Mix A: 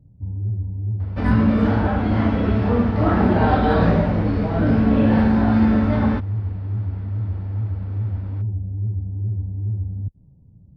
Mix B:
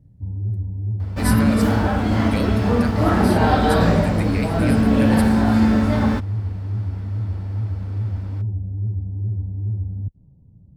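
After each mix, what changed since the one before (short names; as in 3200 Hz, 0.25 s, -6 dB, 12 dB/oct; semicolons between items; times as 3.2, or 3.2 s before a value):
speech: remove band-pass 440 Hz, Q 2.2; second sound: remove air absorption 260 m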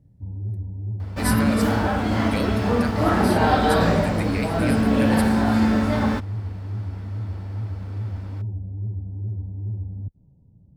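master: add low shelf 250 Hz -5.5 dB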